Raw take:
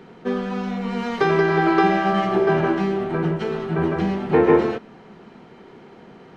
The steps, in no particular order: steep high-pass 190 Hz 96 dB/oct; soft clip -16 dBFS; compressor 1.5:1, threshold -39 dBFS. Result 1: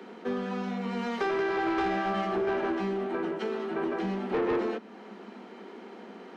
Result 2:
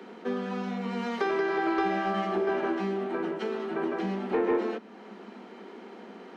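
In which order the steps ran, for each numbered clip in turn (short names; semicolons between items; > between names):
steep high-pass > soft clip > compressor; steep high-pass > compressor > soft clip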